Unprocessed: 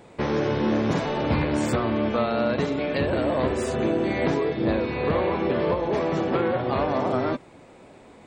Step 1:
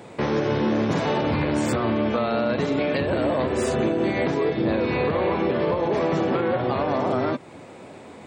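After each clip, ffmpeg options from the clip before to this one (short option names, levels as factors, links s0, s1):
-af "highpass=f=77:w=0.5412,highpass=f=77:w=1.3066,alimiter=limit=0.0944:level=0:latency=1:release=208,volume=2.11"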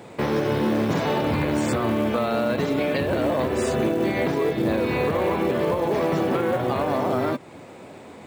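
-af "acrusher=bits=7:mode=log:mix=0:aa=0.000001"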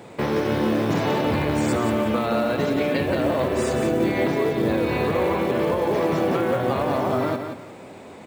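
-af "aecho=1:1:175|350|525:0.447|0.121|0.0326"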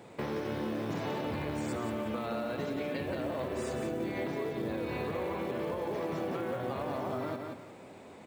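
-af "acompressor=threshold=0.0631:ratio=2.5,volume=0.355"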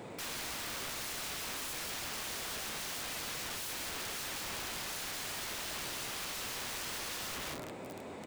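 -af "aeval=exprs='(mod(106*val(0)+1,2)-1)/106':c=same,volume=1.78"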